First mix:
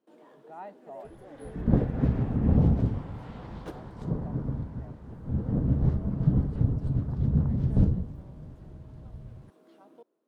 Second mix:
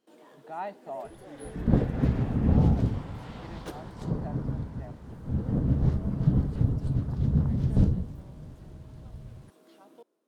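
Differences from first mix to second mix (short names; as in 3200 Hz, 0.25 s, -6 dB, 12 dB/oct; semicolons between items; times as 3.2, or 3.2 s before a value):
speech +6.0 dB; master: add high shelf 2500 Hz +10 dB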